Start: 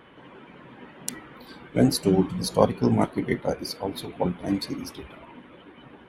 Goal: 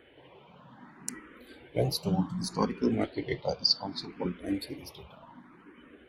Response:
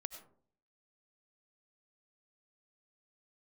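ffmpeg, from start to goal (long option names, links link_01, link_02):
-filter_complex "[0:a]asettb=1/sr,asplit=3[link_01][link_02][link_03];[link_01]atrim=end=2.534[link_04];[link_02]atrim=start=2.53:end=4.4,asetpts=PTS-STARTPTS,afade=type=in:duration=0.004:curve=qsin,afade=type=out:start_time=1.866:duration=0.004:curve=qsin,lowpass=frequency=4800:width_type=q:width=5.9[link_05];[link_03]atrim=start=4.396[link_06];[link_04][link_05]acrossfade=duration=0.004:curve1=hsin:curve2=qsin[link_07];[link_07][link_06]acrossfade=duration=0.004:curve1=qsin:curve2=hsin,asplit=2[link_08][link_09];[link_09]afreqshift=0.66[link_10];[link_08][link_10]amix=inputs=2:normalize=1,volume=-3.5dB"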